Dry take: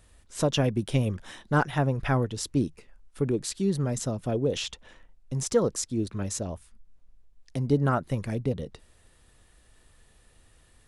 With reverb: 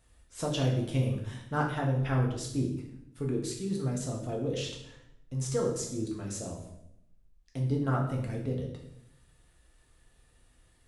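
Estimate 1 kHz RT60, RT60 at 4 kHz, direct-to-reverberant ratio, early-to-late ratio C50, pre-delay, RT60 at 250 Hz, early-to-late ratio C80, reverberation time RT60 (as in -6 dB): 0.70 s, 0.65 s, -1.5 dB, 5.5 dB, 4 ms, 1.1 s, 8.5 dB, 0.75 s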